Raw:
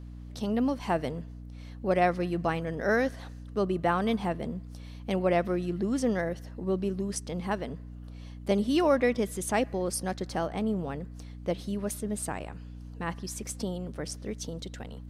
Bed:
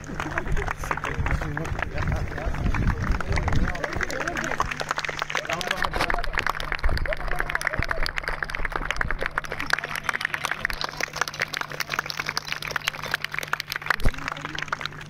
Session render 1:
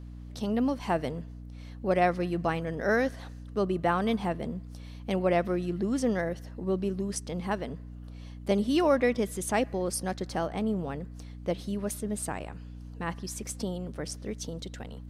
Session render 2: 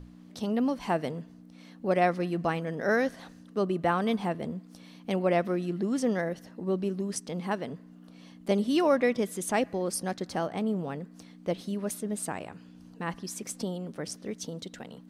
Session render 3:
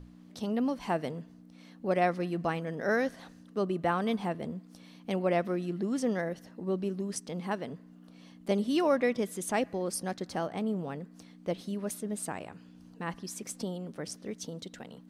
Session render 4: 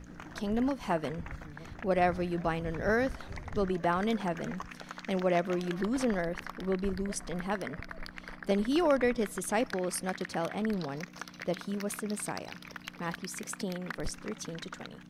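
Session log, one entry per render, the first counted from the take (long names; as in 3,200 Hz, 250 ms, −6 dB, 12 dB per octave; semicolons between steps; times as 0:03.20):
no processing that can be heard
mains-hum notches 60/120 Hz
level −2.5 dB
mix in bed −17.5 dB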